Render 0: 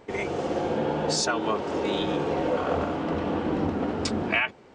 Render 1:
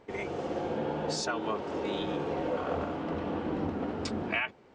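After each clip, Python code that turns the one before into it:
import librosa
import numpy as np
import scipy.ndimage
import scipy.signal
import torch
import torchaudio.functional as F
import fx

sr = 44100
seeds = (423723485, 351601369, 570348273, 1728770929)

y = fx.high_shelf(x, sr, hz=7500.0, db=-8.0)
y = y * librosa.db_to_amplitude(-6.0)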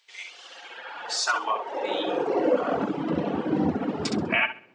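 y = fx.echo_feedback(x, sr, ms=66, feedback_pct=40, wet_db=-4)
y = fx.dereverb_blind(y, sr, rt60_s=1.6)
y = fx.filter_sweep_highpass(y, sr, from_hz=3700.0, to_hz=150.0, start_s=0.15, end_s=3.11, q=1.5)
y = y * librosa.db_to_amplitude(7.0)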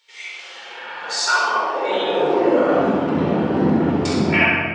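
y = fx.room_shoebox(x, sr, seeds[0], volume_m3=1400.0, walls='mixed', distance_m=4.4)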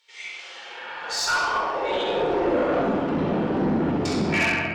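y = fx.tube_stage(x, sr, drive_db=14.0, bias=0.25)
y = y * librosa.db_to_amplitude(-2.5)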